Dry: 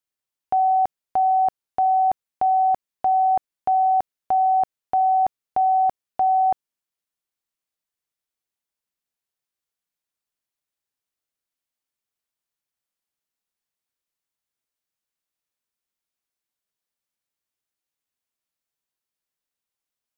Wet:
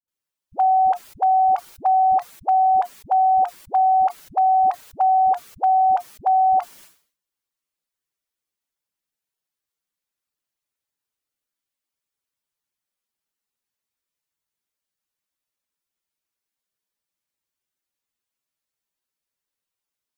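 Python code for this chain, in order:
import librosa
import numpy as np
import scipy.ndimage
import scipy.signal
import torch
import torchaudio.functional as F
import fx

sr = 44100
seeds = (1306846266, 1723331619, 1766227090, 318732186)

y = fx.spec_quant(x, sr, step_db=15)
y = fx.notch(y, sr, hz=710.0, q=16.0)
y = fx.dispersion(y, sr, late='highs', ms=80.0, hz=350.0)
y = fx.dynamic_eq(y, sr, hz=1200.0, q=1.3, threshold_db=-35.0, ratio=4.0, max_db=5)
y = fx.sustainer(y, sr, db_per_s=120.0)
y = y * 10.0 ** (1.5 / 20.0)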